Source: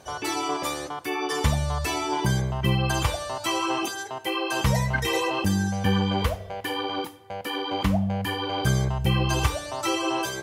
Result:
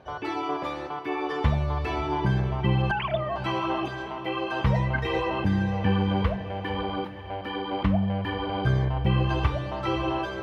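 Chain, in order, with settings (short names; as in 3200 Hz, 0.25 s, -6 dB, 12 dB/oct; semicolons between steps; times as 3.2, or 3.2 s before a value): 2.91–3.36 sine-wave speech; air absorption 360 m; diffused feedback echo 0.546 s, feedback 44%, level -11 dB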